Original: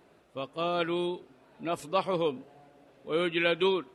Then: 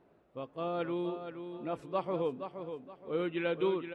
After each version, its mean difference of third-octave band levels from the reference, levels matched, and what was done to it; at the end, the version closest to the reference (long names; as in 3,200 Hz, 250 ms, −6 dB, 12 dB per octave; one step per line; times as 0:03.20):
5.5 dB: low-pass filter 1,000 Hz 6 dB per octave
repeating echo 471 ms, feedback 31%, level −8.5 dB
level −3.5 dB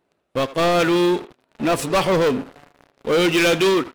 7.0 dB: leveller curve on the samples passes 5
far-end echo of a speakerphone 80 ms, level −12 dB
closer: first